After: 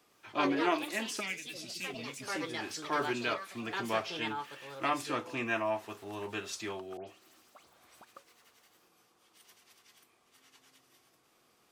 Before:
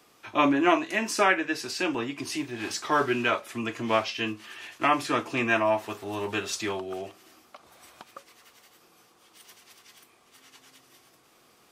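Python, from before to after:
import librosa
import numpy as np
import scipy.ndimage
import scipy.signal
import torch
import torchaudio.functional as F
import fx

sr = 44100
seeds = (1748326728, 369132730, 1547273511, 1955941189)

y = fx.spec_box(x, sr, start_s=1.2, length_s=1.14, low_hz=270.0, high_hz=1900.0, gain_db=-18)
y = fx.echo_pitch(y, sr, ms=107, semitones=5, count=2, db_per_echo=-6.0)
y = fx.dispersion(y, sr, late='highs', ms=110.0, hz=2700.0, at=(6.97, 8.05))
y = F.gain(torch.from_numpy(y), -8.5).numpy()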